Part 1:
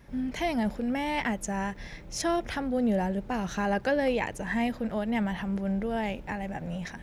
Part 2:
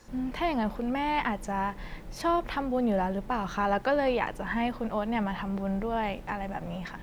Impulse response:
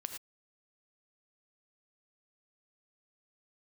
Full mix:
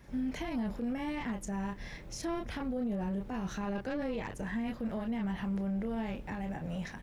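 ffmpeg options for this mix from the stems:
-filter_complex "[0:a]acrossover=split=410[a][b];[b]acompressor=threshold=-40dB:ratio=6[c];[a][c]amix=inputs=2:normalize=0,volume=-2dB[d];[1:a]aeval=exprs='0.2*(cos(1*acos(clip(val(0)/0.2,-1,1)))-cos(1*PI/2))+0.0282*(cos(4*acos(clip(val(0)/0.2,-1,1)))-cos(4*PI/2))':c=same,equalizer=f=730:w=1.8:g=-6,volume=-1,adelay=30,volume=-12dB[e];[d][e]amix=inputs=2:normalize=0,alimiter=level_in=4dB:limit=-24dB:level=0:latency=1:release=29,volume=-4dB"

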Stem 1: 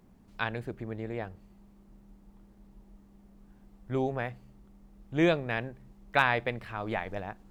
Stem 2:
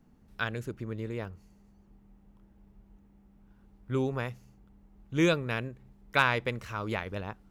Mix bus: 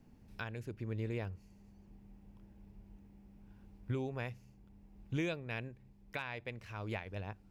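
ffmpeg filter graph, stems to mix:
-filter_complex "[0:a]volume=-17dB,asplit=2[a][b];[1:a]volume=-0.5dB[c];[b]apad=whole_len=331174[d];[c][d]sidechaincompress=threshold=-49dB:ratio=8:attack=7.3:release=1450[e];[a][e]amix=inputs=2:normalize=0,equalizer=f=100:t=o:w=0.33:g=7,equalizer=f=1.25k:t=o:w=0.33:g=-6,equalizer=f=2.5k:t=o:w=0.33:g=5,equalizer=f=5k:t=o:w=0.33:g=4,alimiter=level_in=3dB:limit=-24dB:level=0:latency=1:release=459,volume=-3dB"

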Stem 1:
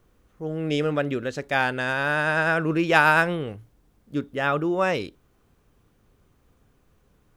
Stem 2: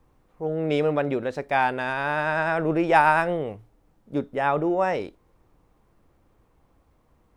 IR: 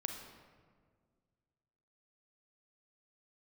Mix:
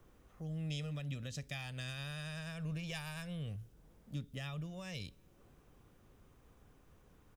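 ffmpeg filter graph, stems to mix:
-filter_complex "[0:a]acompressor=threshold=-26dB:ratio=6,bandreject=f=4.3k:w=19,volume=-3dB,asplit=2[a][b];[b]volume=-21dB[c];[1:a]adelay=1.9,volume=-10dB[d];[2:a]atrim=start_sample=2205[e];[c][e]afir=irnorm=-1:irlink=0[f];[a][d][f]amix=inputs=3:normalize=0,acrossover=split=190|3000[g][h][i];[h]acompressor=threshold=-58dB:ratio=4[j];[g][j][i]amix=inputs=3:normalize=0"

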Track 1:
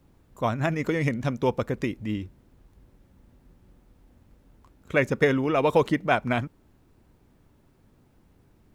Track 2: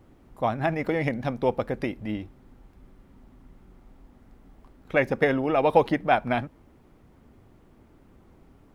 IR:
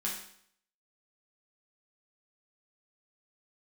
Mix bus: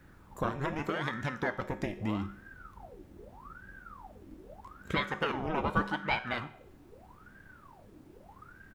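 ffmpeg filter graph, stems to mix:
-filter_complex "[0:a]acompressor=threshold=-30dB:ratio=6,volume=0.5dB,asplit=2[a][b];[b]volume=-12.5dB[c];[1:a]asubboost=boost=6:cutoff=51,aeval=exprs='val(0)*sin(2*PI*940*n/s+940*0.7/0.81*sin(2*PI*0.81*n/s))':c=same,adelay=0.5,volume=-9dB,asplit=3[d][e][f];[e]volume=-14dB[g];[f]apad=whole_len=385435[h];[a][h]sidechaincompress=threshold=-41dB:ratio=8:attack=27:release=428[i];[2:a]atrim=start_sample=2205[j];[c][g]amix=inputs=2:normalize=0[k];[k][j]afir=irnorm=-1:irlink=0[l];[i][d][l]amix=inputs=3:normalize=0"

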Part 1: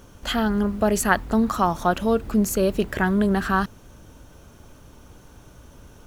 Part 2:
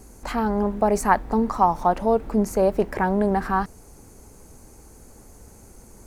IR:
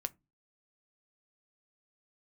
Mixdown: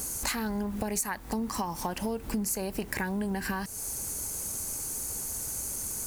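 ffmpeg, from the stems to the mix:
-filter_complex "[0:a]volume=2dB[a];[1:a]highpass=61,acompressor=threshold=-31dB:ratio=2.5,crystalizer=i=10:c=0,volume=-1.5dB,asplit=2[b][c];[c]apad=whole_len=267303[d];[a][d]sidechaincompress=threshold=-32dB:ratio=8:attack=5.3:release=683[e];[e][b]amix=inputs=2:normalize=0,acompressor=threshold=-28dB:ratio=5"

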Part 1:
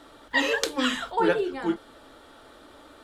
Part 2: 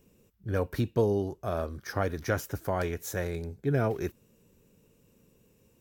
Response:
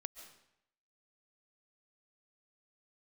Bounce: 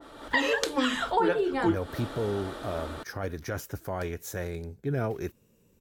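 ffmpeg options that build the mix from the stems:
-filter_complex "[0:a]acompressor=threshold=-35dB:ratio=4,adynamicequalizer=threshold=0.00178:dfrequency=1800:dqfactor=0.7:tfrequency=1800:tqfactor=0.7:attack=5:release=100:ratio=0.375:range=1.5:mode=cutabove:tftype=highshelf,volume=1.5dB[a];[1:a]alimiter=limit=-19.5dB:level=0:latency=1:release=21,adelay=1200,volume=-11dB[b];[a][b]amix=inputs=2:normalize=0,dynaudnorm=f=150:g=3:m=9.5dB"

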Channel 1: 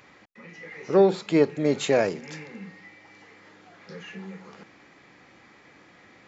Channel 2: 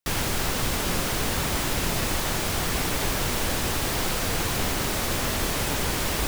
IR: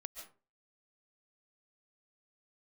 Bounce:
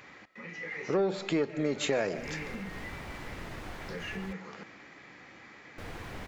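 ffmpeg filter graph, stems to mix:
-filter_complex "[0:a]asoftclip=type=tanh:threshold=-11dB,volume=-2dB,asplit=3[a][b][c];[b]volume=-5.5dB[d];[1:a]lowpass=f=1.6k:p=1,adelay=1550,volume=-15dB,asplit=3[e][f][g];[e]atrim=end=4.33,asetpts=PTS-STARTPTS,afade=t=out:st=4.326:d=0.004:c=hsin[h];[f]atrim=start=4.33:end=5.78,asetpts=PTS-STARTPTS,volume=0[i];[g]atrim=start=5.78,asetpts=PTS-STARTPTS,afade=t=in:d=0.004:c=hsin[j];[h][i][j]concat=n=3:v=0:a=1[k];[c]apad=whole_len=345186[l];[k][l]sidechaincompress=threshold=-41dB:ratio=8:attack=7.9:release=179[m];[2:a]atrim=start_sample=2205[n];[d][n]afir=irnorm=-1:irlink=0[o];[a][m][o]amix=inputs=3:normalize=0,equalizer=f=1.9k:w=1.2:g=3.5,acompressor=threshold=-28dB:ratio=3"

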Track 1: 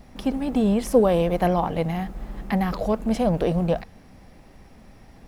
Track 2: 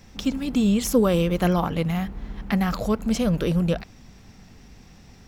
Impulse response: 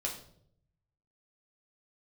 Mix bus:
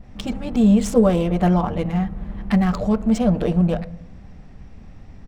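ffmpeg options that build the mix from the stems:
-filter_complex "[0:a]bass=f=250:g=11,treble=f=4k:g=-12,volume=-6.5dB,asplit=2[a][b];[b]volume=-8dB[c];[1:a]equalizer=f=8.1k:w=2.2:g=10,adynamicsmooth=sensitivity=4.5:basefreq=2.8k,adynamicequalizer=threshold=0.00891:dfrequency=1700:dqfactor=0.7:tfrequency=1700:tqfactor=0.7:attack=5:release=100:ratio=0.375:range=2.5:mode=cutabove:tftype=highshelf,volume=-1,adelay=7.3,volume=-0.5dB[d];[2:a]atrim=start_sample=2205[e];[c][e]afir=irnorm=-1:irlink=0[f];[a][d][f]amix=inputs=3:normalize=0"

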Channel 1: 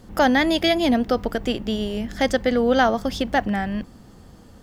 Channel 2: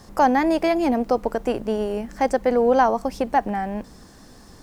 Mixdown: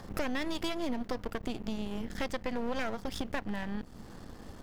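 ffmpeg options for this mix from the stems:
-filter_complex "[0:a]aeval=exprs='max(val(0),0)':c=same,volume=1dB[a];[1:a]acompressor=mode=upward:threshold=-26dB:ratio=2.5,lowpass=3.1k,volume=-14dB[b];[a][b]amix=inputs=2:normalize=0,acompressor=threshold=-35dB:ratio=2.5"

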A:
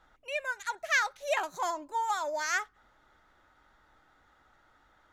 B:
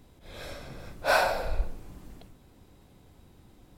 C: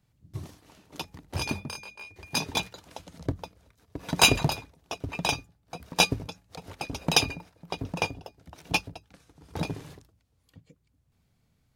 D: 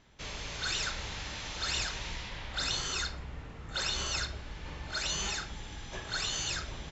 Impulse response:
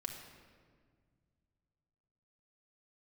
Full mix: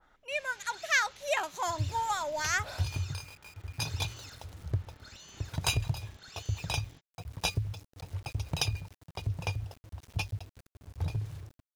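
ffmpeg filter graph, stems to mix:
-filter_complex "[0:a]volume=-1dB,asplit=2[a][b];[1:a]acompressor=threshold=-30dB:ratio=4,adelay=1600,volume=-14dB[c];[2:a]lowshelf=f=150:t=q:w=3:g=12.5,acompressor=threshold=-21dB:ratio=3,aeval=exprs='val(0)*gte(abs(val(0)),0.0075)':c=same,adelay=1450,volume=-8dB[d];[3:a]highpass=90,asoftclip=type=tanh:threshold=-27dB,adelay=100,volume=-17dB[e];[b]apad=whole_len=237062[f];[c][f]sidechaingate=range=-33dB:threshold=-57dB:ratio=16:detection=peak[g];[a][g][d][e]amix=inputs=4:normalize=0,adynamicequalizer=threshold=0.00398:dfrequency=2300:dqfactor=0.7:tfrequency=2300:tqfactor=0.7:attack=5:release=100:ratio=0.375:range=2:mode=boostabove:tftype=highshelf"

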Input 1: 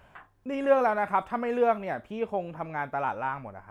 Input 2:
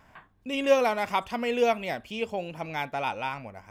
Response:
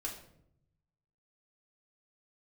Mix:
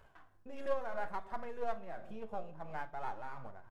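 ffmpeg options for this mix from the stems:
-filter_complex "[0:a]aeval=exprs='if(lt(val(0),0),0.447*val(0),val(0))':c=same,equalizer=f=2.4k:t=o:w=0.6:g=-6,flanger=delay=2.3:depth=6.9:regen=55:speed=0.66:shape=sinusoidal,volume=-1.5dB,asplit=3[a][b][c];[b]volume=-6dB[d];[1:a]afwtdn=0.0282,highshelf=f=2k:g=-9.5,aeval=exprs='0.0631*(abs(mod(val(0)/0.0631+3,4)-2)-1)':c=same,adelay=0.5,volume=-5dB[e];[c]apad=whole_len=163250[f];[e][f]sidechaincompress=threshold=-43dB:ratio=3:attack=16:release=390[g];[2:a]atrim=start_sample=2205[h];[d][h]afir=irnorm=-1:irlink=0[i];[a][g][i]amix=inputs=3:normalize=0,tremolo=f=2.9:d=0.53,acompressor=threshold=-44dB:ratio=1.5"

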